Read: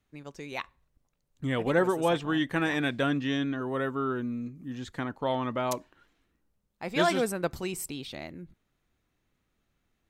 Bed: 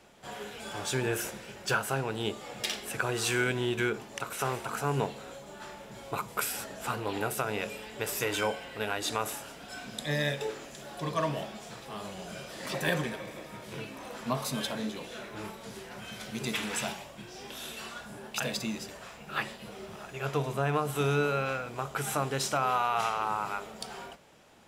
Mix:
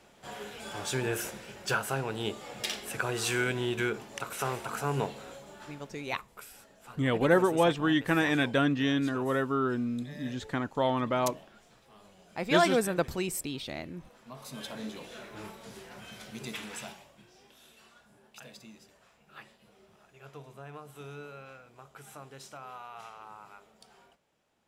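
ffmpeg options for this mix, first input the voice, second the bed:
ffmpeg -i stem1.wav -i stem2.wav -filter_complex "[0:a]adelay=5550,volume=1.5dB[link_01];[1:a]volume=12dB,afade=type=out:start_time=5.28:duration=0.95:silence=0.16788,afade=type=in:start_time=14.31:duration=0.62:silence=0.223872,afade=type=out:start_time=15.9:duration=1.65:silence=0.211349[link_02];[link_01][link_02]amix=inputs=2:normalize=0" out.wav

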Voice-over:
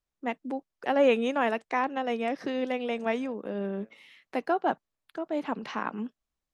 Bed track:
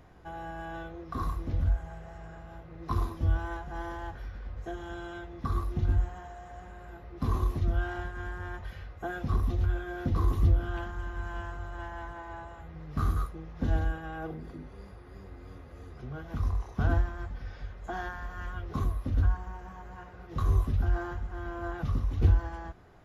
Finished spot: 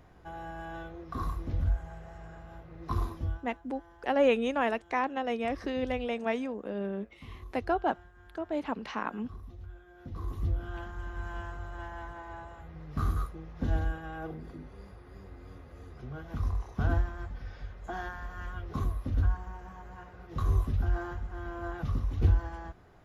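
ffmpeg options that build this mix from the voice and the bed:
ffmpeg -i stem1.wav -i stem2.wav -filter_complex "[0:a]adelay=3200,volume=-2dB[link_01];[1:a]volume=15dB,afade=type=out:start_time=3.13:duration=0.29:silence=0.149624,afade=type=in:start_time=9.94:duration=1.29:silence=0.149624[link_02];[link_01][link_02]amix=inputs=2:normalize=0" out.wav

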